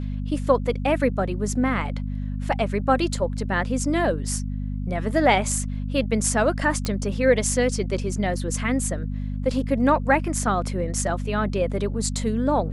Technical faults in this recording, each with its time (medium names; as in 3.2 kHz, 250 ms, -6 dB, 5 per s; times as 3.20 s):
hum 50 Hz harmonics 5 -28 dBFS
6.85 s: pop -12 dBFS